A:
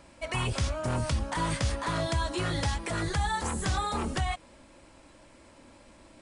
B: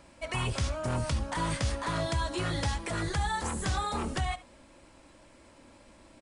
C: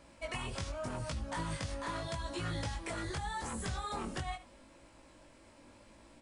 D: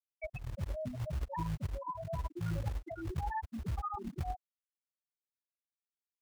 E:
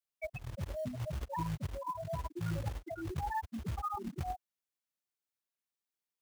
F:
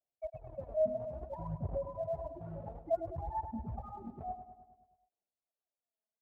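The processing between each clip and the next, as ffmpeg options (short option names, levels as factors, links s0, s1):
-af "aecho=1:1:72:0.126,volume=0.841"
-af "acompressor=threshold=0.0251:ratio=6,flanger=delay=17.5:depth=4.4:speed=0.82"
-filter_complex "[0:a]afftfilt=real='re*gte(hypot(re,im),0.0631)':imag='im*gte(hypot(re,im),0.0631)':win_size=1024:overlap=0.75,acrossover=split=240|750|4700[s0][s1][s2][s3];[s0]acrusher=bits=3:mode=log:mix=0:aa=0.000001[s4];[s1]alimiter=level_in=10.6:limit=0.0631:level=0:latency=1,volume=0.0944[s5];[s4][s5][s2][s3]amix=inputs=4:normalize=0,volume=1.58"
-af "highpass=f=90:p=1,acrusher=bits=6:mode=log:mix=0:aa=0.000001,volume=1.19"
-filter_complex "[0:a]lowpass=f=680:t=q:w=4.9,aphaser=in_gain=1:out_gain=1:delay=4.7:decay=0.64:speed=0.58:type=sinusoidal,asplit=2[s0][s1];[s1]aecho=0:1:104|208|312|416|520|624|728:0.299|0.179|0.107|0.0645|0.0387|0.0232|0.0139[s2];[s0][s2]amix=inputs=2:normalize=0,volume=0.398"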